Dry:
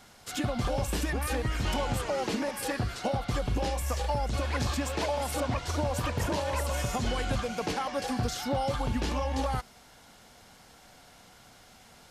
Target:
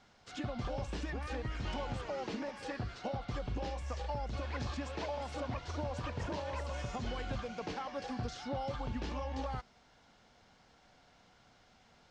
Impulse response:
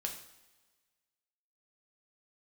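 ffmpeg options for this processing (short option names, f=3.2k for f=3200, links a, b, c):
-af "lowpass=f=6.5k:w=0.5412,lowpass=f=6.5k:w=1.3066,highshelf=f=4.5k:g=-5,volume=-8.5dB"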